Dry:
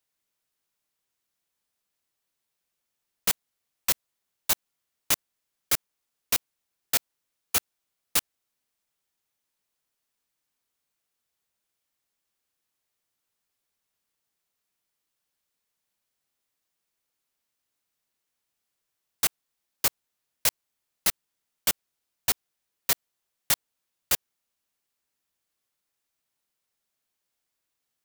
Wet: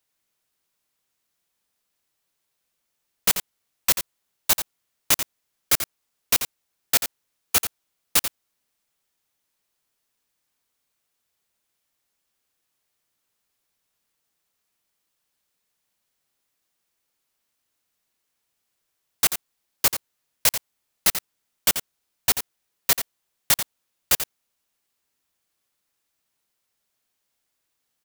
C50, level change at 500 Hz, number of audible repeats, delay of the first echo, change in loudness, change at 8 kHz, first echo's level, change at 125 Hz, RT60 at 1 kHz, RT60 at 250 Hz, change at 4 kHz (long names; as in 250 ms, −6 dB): no reverb audible, +5.0 dB, 1, 87 ms, +4.5 dB, +5.0 dB, −9.5 dB, +5.0 dB, no reverb audible, no reverb audible, +5.0 dB